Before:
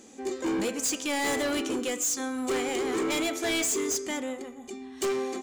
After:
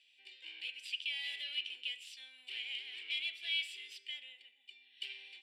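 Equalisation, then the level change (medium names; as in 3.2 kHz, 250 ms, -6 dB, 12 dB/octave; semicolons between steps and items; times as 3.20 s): ladder band-pass 3.1 kHz, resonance 65%; static phaser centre 2.9 kHz, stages 4; +3.0 dB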